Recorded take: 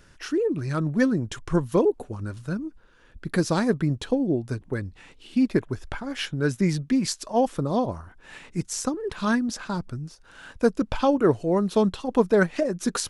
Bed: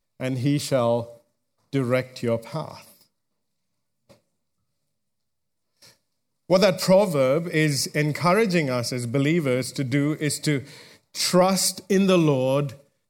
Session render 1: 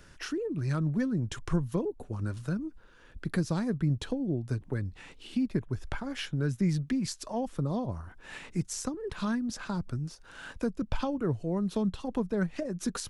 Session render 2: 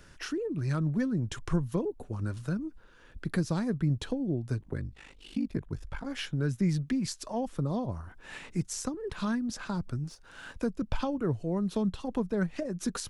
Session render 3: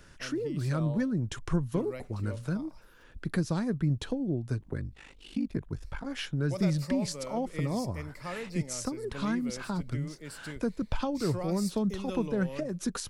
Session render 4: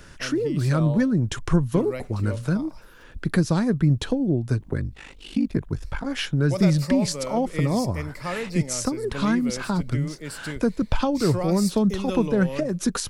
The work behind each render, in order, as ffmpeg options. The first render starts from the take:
-filter_complex "[0:a]acrossover=split=180[a][b];[b]acompressor=threshold=-36dB:ratio=3[c];[a][c]amix=inputs=2:normalize=0"
-filter_complex "[0:a]asettb=1/sr,asplit=3[a][b][c];[a]atrim=end=4.604[d];[b]atrim=start=4.6:end=6.06,asetpts=PTS-STARTPTS,afade=t=in:d=0.004:c=qsin,afade=t=out:st=1.456:d=0.004:c=qsin,aeval=exprs='val(0)*sin(2*PI*25*n/s)':c=same[e];[c]atrim=start=6.056[f];[d][e]acrossfade=d=0.004:c1=hsin:c2=qsin[g];[g][f]acrossfade=d=0.004:c1=qsin:c2=hsin,asettb=1/sr,asplit=3[h][i][j];[h]atrim=end=10.044[k];[i]atrim=start=10.04:end=10.54,asetpts=PTS-STARTPTS,afade=t=in:d=0.004:c=qsin,afade=t=out:st=0.496:d=0.004:c=qsin,aeval=exprs='if(lt(val(0),0),0.708*val(0),val(0))':c=same[l];[j]atrim=start=10.536[m];[k][l]acrossfade=d=0.004:c1=hsin:c2=qsin[n];[n][m]acrossfade=d=0.004:c1=qsin:c2=hsin"
-filter_complex "[1:a]volume=-19.5dB[a];[0:a][a]amix=inputs=2:normalize=0"
-af "volume=8.5dB"

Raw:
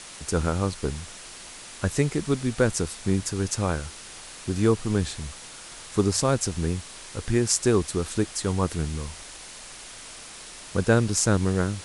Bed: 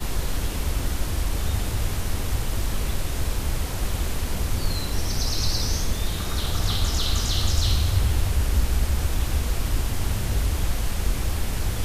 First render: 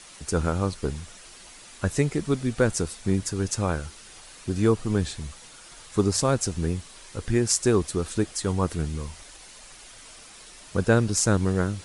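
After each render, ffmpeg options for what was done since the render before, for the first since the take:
-af "afftdn=nr=7:nf=-43"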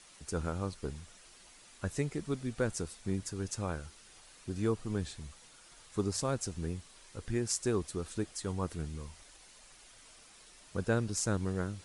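-af "volume=-10.5dB"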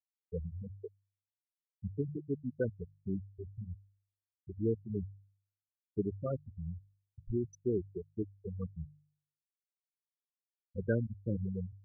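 -af "afftfilt=real='re*gte(hypot(re,im),0.112)':imag='im*gte(hypot(re,im),0.112)':win_size=1024:overlap=0.75,bandreject=f=49.55:t=h:w=4,bandreject=f=99.1:t=h:w=4,bandreject=f=148.65:t=h:w=4"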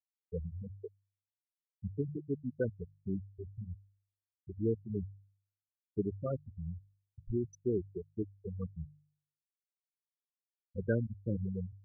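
-af anull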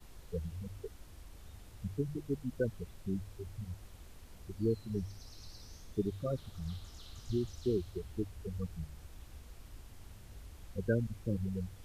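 -filter_complex "[1:a]volume=-27.5dB[a];[0:a][a]amix=inputs=2:normalize=0"

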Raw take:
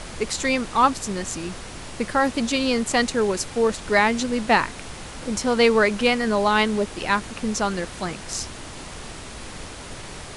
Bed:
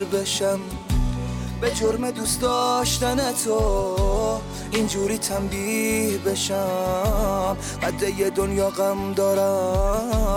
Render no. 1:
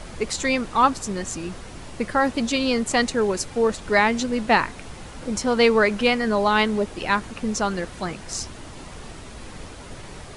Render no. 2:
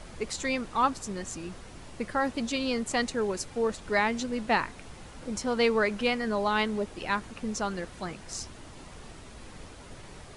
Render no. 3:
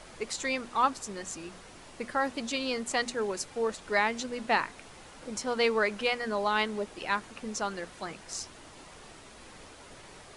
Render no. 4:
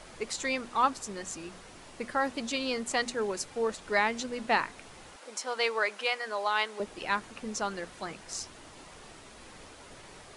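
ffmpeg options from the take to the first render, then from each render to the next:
-af "afftdn=nr=6:nf=-38"
-af "volume=-7.5dB"
-af "lowshelf=f=220:g=-10.5,bandreject=f=60:t=h:w=6,bandreject=f=120:t=h:w=6,bandreject=f=180:t=h:w=6,bandreject=f=240:t=h:w=6"
-filter_complex "[0:a]asettb=1/sr,asplit=3[a][b][c];[a]atrim=end=5.164[d];[b]atrim=start=5.16:end=6.8,asetpts=PTS-STARTPTS,afade=t=in:d=0.004:c=qsin,afade=t=out:st=1.636:d=0.004:c=qsin,highpass=560[e];[c]atrim=start=6.796[f];[d][e]acrossfade=d=0.004:c1=hsin:c2=qsin[g];[g][f]acrossfade=d=0.004:c1=qsin:c2=hsin"

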